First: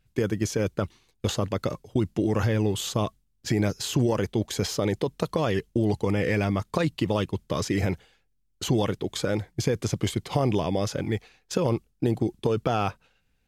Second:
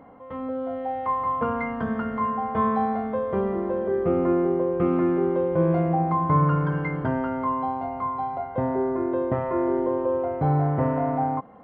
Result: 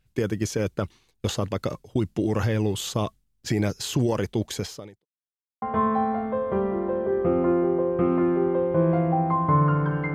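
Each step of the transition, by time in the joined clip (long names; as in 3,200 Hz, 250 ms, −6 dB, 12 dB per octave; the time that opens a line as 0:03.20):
first
0:04.52–0:05.06: fade out quadratic
0:05.06–0:05.62: silence
0:05.62: continue with second from 0:02.43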